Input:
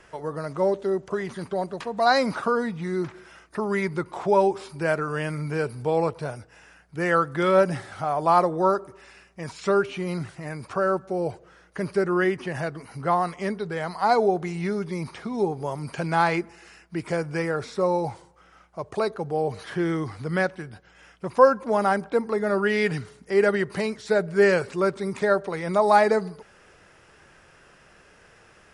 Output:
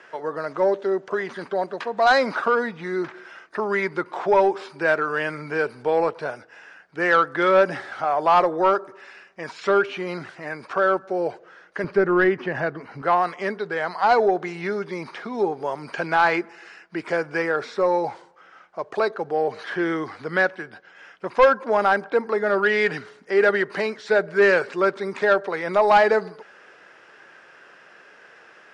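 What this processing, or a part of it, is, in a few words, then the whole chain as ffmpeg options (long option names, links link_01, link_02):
intercom: -filter_complex "[0:a]highpass=320,lowpass=4600,equalizer=frequency=1600:width_type=o:width=0.39:gain=5,asoftclip=type=tanh:threshold=-12dB,asettb=1/sr,asplit=3[link_01][link_02][link_03];[link_01]atrim=end=11.844[link_04];[link_02]atrim=start=11.84:end=13.02,asetpts=PTS-STARTPTS,afade=type=in:duration=0.004:curve=qsin,afade=type=out:start_time=1.176:duration=0.004:curve=qsin,aemphasis=mode=reproduction:type=bsi[link_05];[link_03]atrim=start=13.016[link_06];[link_04][link_05]acrossfade=duration=0.004:curve1=hsin:curve2=qsin[link_07];[link_07][link_06]acrossfade=duration=0.004:curve1=qsin:curve2=hsin,volume=4dB"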